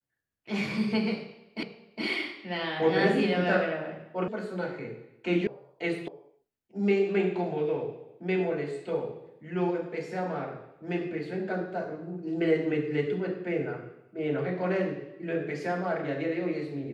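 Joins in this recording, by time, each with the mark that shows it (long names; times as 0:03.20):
0:01.63: the same again, the last 0.41 s
0:04.28: cut off before it has died away
0:05.47: cut off before it has died away
0:06.08: cut off before it has died away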